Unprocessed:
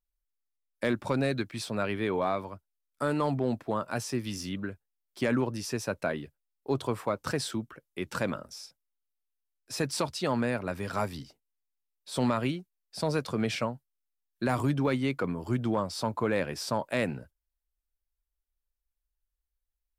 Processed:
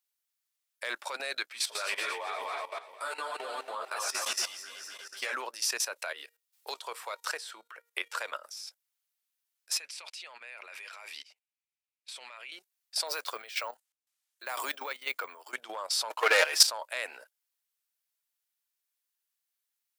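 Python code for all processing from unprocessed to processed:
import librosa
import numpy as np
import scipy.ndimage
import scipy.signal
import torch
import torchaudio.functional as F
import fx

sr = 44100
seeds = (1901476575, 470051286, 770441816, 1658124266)

y = fx.chain(x, sr, fx.reverse_delay_fb(ms=121, feedback_pct=70, wet_db=-4.0),
    fx.ensemble(), at=(1.46, 5.34))
y = fx.chain(y, sr, fx.highpass(hz=240.0, slope=12),
    fx.comb_fb(f0_hz=470.0, decay_s=0.25, harmonics='all', damping=0.0, mix_pct=50),
    fx.band_squash(depth_pct=100), at=(5.97, 8.34))
y = fx.chain(y, sr, fx.peak_eq(hz=2400.0, db=12.0, octaves=0.68),
    fx.level_steps(step_db=22),
    fx.lowpass(hz=11000.0, slope=12), at=(9.77, 12.52))
y = fx.chain(y, sr, fx.resample_bad(factor=2, down='none', up='hold'),
    fx.chopper(hz=2.0, depth_pct=65, duty_pct=70), at=(13.07, 15.53))
y = fx.chain(y, sr, fx.highpass(hz=310.0, slope=12),
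    fx.leveller(passes=2),
    fx.comb(ms=6.4, depth=0.71), at=(16.1, 16.67))
y = scipy.signal.sosfilt(scipy.signal.butter(4, 510.0, 'highpass', fs=sr, output='sos'), y)
y = fx.level_steps(y, sr, step_db=14)
y = fx.tilt_shelf(y, sr, db=-8.0, hz=880.0)
y = F.gain(torch.from_numpy(y), 5.5).numpy()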